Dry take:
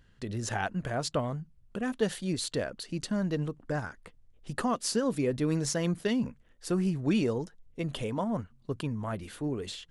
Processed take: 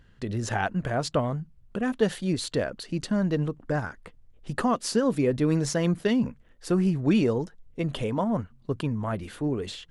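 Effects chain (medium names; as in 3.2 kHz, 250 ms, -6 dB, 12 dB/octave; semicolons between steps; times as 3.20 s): treble shelf 4 kHz -6.5 dB; trim +5 dB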